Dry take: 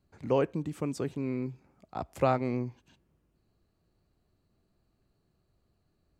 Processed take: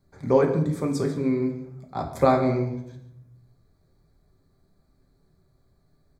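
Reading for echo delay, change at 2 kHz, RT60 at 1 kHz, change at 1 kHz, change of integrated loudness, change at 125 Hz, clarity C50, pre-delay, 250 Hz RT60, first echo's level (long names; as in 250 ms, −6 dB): 142 ms, +6.0 dB, 0.65 s, +7.0 dB, +7.5 dB, +8.0 dB, 8.0 dB, 5 ms, 1.1 s, −16.0 dB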